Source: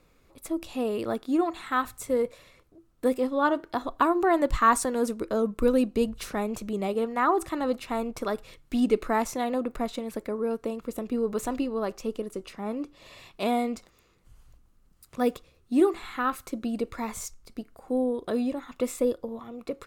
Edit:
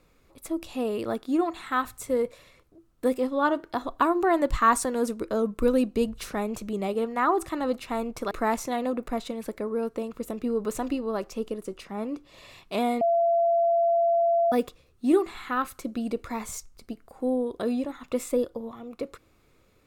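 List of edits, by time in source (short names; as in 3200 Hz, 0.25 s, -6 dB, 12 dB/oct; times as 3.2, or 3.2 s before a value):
8.31–8.99 cut
13.69–15.2 bleep 679 Hz -19 dBFS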